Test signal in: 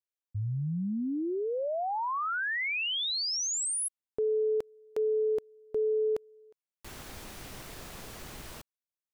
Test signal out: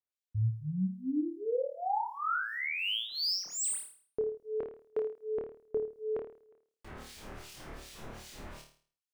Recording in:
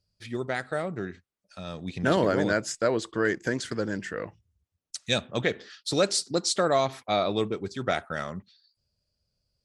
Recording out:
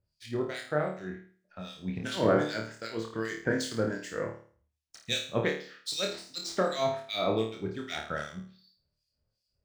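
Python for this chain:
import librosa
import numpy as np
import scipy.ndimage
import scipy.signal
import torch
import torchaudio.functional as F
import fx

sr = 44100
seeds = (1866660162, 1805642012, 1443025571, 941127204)

y = scipy.signal.medfilt(x, 3)
y = fx.harmonic_tremolo(y, sr, hz=2.6, depth_pct=100, crossover_hz=2300.0)
y = fx.room_flutter(y, sr, wall_m=4.6, rt60_s=0.45)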